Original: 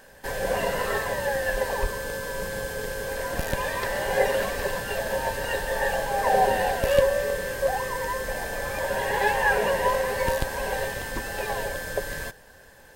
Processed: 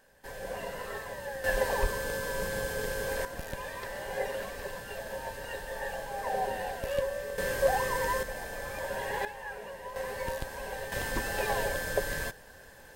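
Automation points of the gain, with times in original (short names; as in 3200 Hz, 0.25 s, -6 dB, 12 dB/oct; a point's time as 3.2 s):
-12 dB
from 1.44 s -2 dB
from 3.25 s -11 dB
from 7.38 s -1 dB
from 8.23 s -8 dB
from 9.25 s -19 dB
from 9.96 s -10 dB
from 10.92 s -1 dB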